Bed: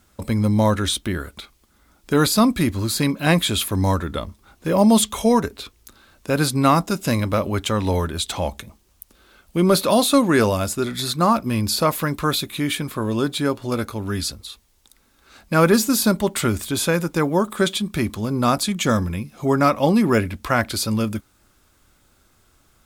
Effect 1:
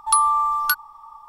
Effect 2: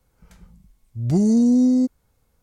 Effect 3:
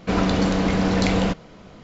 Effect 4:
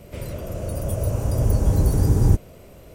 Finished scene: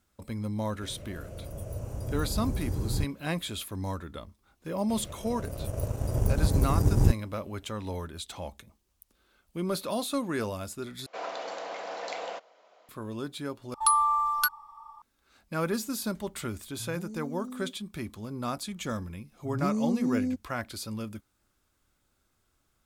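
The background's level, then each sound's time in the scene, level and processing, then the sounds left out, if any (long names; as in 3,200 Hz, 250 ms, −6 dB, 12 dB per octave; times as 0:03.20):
bed −14.5 dB
0:00.69: mix in 4 −13.5 dB
0:04.76: mix in 4 −3 dB + power curve on the samples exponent 1.4
0:11.06: overwrite with 3 −5 dB + four-pole ladder high-pass 530 Hz, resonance 45%
0:13.74: overwrite with 1 −5.5 dB
0:15.84: mix in 2 −11.5 dB + downward compressor 4 to 1, threshold −30 dBFS
0:18.49: mix in 2 −12 dB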